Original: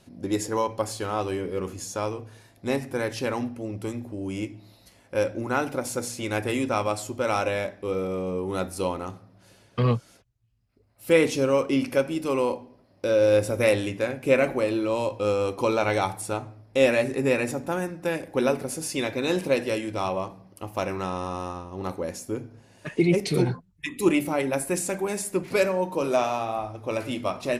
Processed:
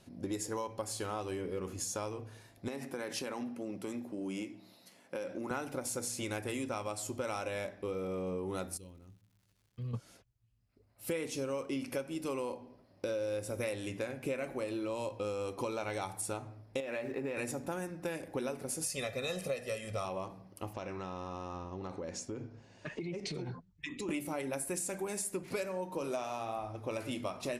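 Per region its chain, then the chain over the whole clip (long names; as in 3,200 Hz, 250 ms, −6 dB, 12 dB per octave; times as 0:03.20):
0:02.68–0:05.51: Chebyshev high-pass filter 170 Hz, order 3 + downward compressor, threshold −29 dBFS
0:08.76–0:09.93: guitar amp tone stack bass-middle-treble 10-0-1 + surface crackle 240 per second −57 dBFS
0:16.80–0:17.37: running median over 5 samples + bass and treble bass −7 dB, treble −10 dB + downward compressor 10 to 1, threshold −23 dBFS
0:18.84–0:20.05: notch filter 780 Hz, Q 22 + comb filter 1.6 ms, depth 90%
0:20.73–0:24.09: low-pass filter 7,000 Hz 24 dB per octave + downward compressor, threshold −32 dBFS
whole clip: dynamic equaliser 9,000 Hz, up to +6 dB, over −48 dBFS, Q 0.73; downward compressor 6 to 1, threshold −30 dBFS; level −4 dB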